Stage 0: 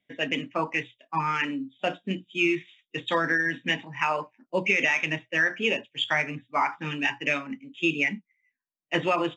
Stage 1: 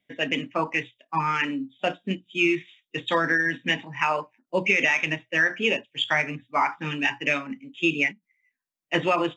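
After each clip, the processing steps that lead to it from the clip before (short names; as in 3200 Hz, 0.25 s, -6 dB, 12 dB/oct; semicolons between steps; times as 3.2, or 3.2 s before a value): ending taper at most 360 dB/s; gain +2 dB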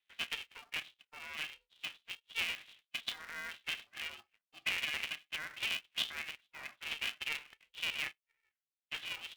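limiter -18.5 dBFS, peak gain reduction 11 dB; ladder band-pass 3200 Hz, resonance 50%; polarity switched at an audio rate 230 Hz; gain +1 dB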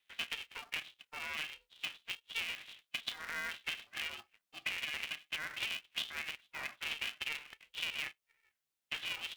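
compressor 6:1, threshold -42 dBFS, peak gain reduction 12 dB; gain +6 dB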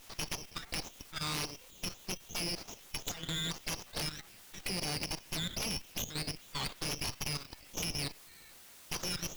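zero-crossing step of -39.5 dBFS; added harmonics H 3 -11 dB, 8 -10 dB, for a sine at -23.5 dBFS; level quantiser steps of 10 dB; gain +4.5 dB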